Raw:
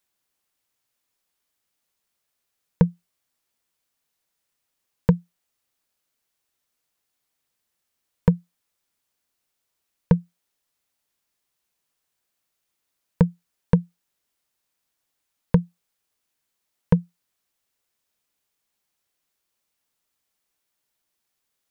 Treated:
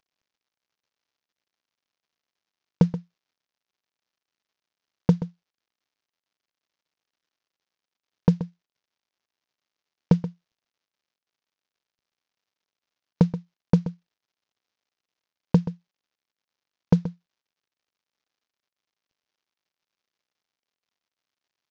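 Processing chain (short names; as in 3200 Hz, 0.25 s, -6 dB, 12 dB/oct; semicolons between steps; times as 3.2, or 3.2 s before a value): CVSD 32 kbps; outdoor echo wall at 22 m, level -13 dB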